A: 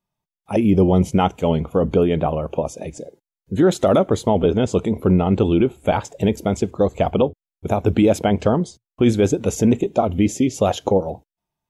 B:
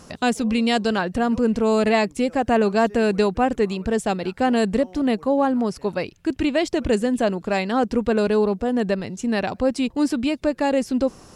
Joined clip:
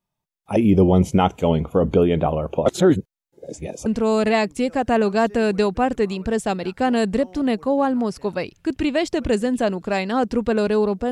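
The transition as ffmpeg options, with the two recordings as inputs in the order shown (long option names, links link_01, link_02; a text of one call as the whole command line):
ffmpeg -i cue0.wav -i cue1.wav -filter_complex "[0:a]apad=whole_dur=11.11,atrim=end=11.11,asplit=2[link_01][link_02];[link_01]atrim=end=2.662[link_03];[link_02]atrim=start=2.658:end=3.862,asetpts=PTS-STARTPTS,areverse[link_04];[1:a]atrim=start=1.458:end=8.71[link_05];[link_03][link_04]acrossfade=duration=0.004:curve1=hsin:curve2=hsin[link_06];[link_06][link_05]acrossfade=duration=0.004:curve1=hsin:curve2=hsin" out.wav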